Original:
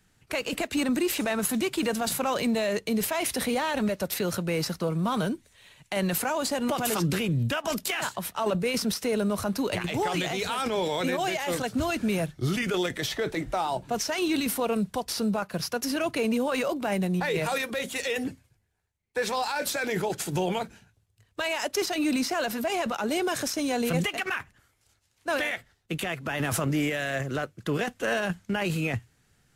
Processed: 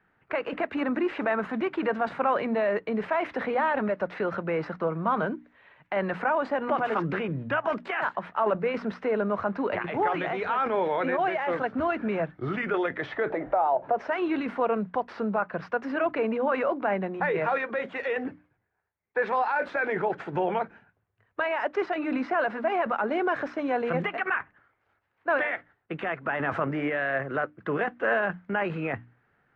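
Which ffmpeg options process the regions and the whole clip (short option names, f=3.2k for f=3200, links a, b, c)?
-filter_complex "[0:a]asettb=1/sr,asplit=3[a][b][c];[a]atrim=end=13.304[d];[b]atrim=start=13.3:end=14.07,asetpts=PTS-STARTPTS,afade=t=in:d=0.004:c=qsin,afade=t=out:st=0.766:d=0.004:c=qsin,equalizer=f=620:t=o:w=1.3:g=14,acompressor=threshold=-28dB:ratio=2.5:attack=3.2:release=140:knee=1:detection=peak[e];[c]atrim=start=14.066[f];[d][e]acrossfade=d=0.004:c1=hsin:c2=qsin[g];[g][f]acrossfade=d=0.004:c1=qsin:c2=hsin,lowpass=f=1.7k:w=0.5412,lowpass=f=1.7k:w=1.3066,aemphasis=mode=production:type=riaa,bandreject=f=60:t=h:w=6,bandreject=f=120:t=h:w=6,bandreject=f=180:t=h:w=6,bandreject=f=240:t=h:w=6,bandreject=f=300:t=h:w=6,volume=4.5dB"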